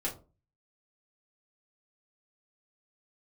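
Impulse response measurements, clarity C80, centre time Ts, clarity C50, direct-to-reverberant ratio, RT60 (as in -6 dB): 18.0 dB, 19 ms, 12.0 dB, -5.5 dB, 0.35 s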